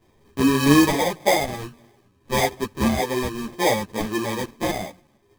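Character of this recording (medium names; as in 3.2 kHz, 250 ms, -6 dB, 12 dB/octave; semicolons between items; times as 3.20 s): phasing stages 8, 1.7 Hz, lowest notch 580–1300 Hz; aliases and images of a low sample rate 1.4 kHz, jitter 0%; a shimmering, thickened sound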